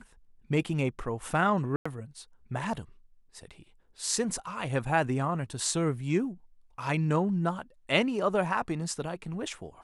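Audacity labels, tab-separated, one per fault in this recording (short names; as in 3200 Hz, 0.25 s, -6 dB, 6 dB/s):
1.760000	1.850000	gap 95 ms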